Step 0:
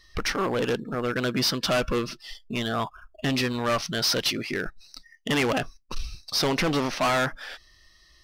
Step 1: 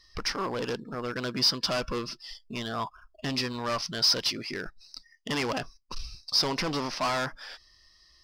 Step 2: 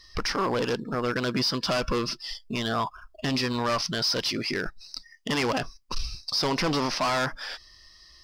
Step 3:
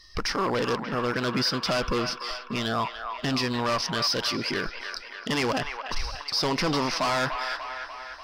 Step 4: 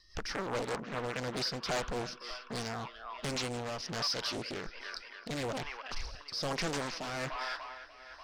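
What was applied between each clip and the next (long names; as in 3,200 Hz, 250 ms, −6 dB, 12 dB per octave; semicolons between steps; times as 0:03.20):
thirty-one-band graphic EQ 1,000 Hz +6 dB, 5,000 Hz +11 dB, 12,500 Hz −4 dB; level −6.5 dB
brickwall limiter −26 dBFS, peak gain reduction 11 dB; level +7 dB
delay with a band-pass on its return 294 ms, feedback 62%, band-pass 1,500 Hz, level −5 dB
rotating-speaker cabinet horn 5 Hz, later 1.2 Hz, at 0:01.02; highs frequency-modulated by the lows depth 0.95 ms; level −6.5 dB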